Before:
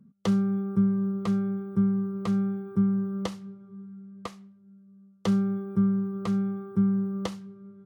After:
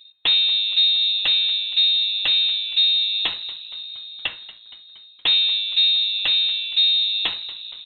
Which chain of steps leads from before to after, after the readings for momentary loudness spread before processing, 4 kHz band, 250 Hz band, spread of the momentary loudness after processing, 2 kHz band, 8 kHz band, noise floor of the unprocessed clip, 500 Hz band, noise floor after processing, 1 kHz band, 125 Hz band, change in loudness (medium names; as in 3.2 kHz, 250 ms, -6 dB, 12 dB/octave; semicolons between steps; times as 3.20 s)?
18 LU, +35.5 dB, under -25 dB, 13 LU, +19.0 dB, no reading, -56 dBFS, under -10 dB, -47 dBFS, -1.0 dB, under -25 dB, +10.5 dB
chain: overdrive pedal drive 19 dB, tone 2.6 kHz, clips at -14 dBFS; frequency-shifting echo 234 ms, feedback 65%, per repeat -110 Hz, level -17.5 dB; frequency inversion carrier 3.9 kHz; trim +4.5 dB